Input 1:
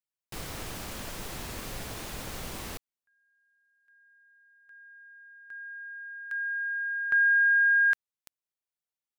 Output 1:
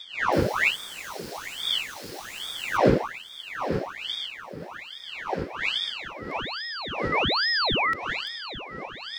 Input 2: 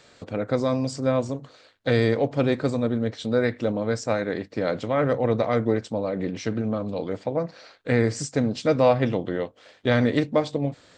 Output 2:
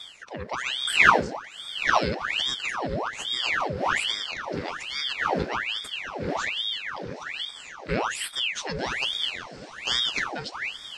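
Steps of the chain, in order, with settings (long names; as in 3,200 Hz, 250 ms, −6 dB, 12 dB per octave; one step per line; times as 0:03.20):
wind on the microphone 420 Hz −25 dBFS
linear-phase brick-wall band-stop 260–1,000 Hz
parametric band 4,800 Hz +12 dB 0.22 octaves
feedback delay with all-pass diffusion 807 ms, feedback 66%, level −16 dB
ring modulator whose carrier an LFO sweeps 1,900 Hz, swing 85%, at 1.2 Hz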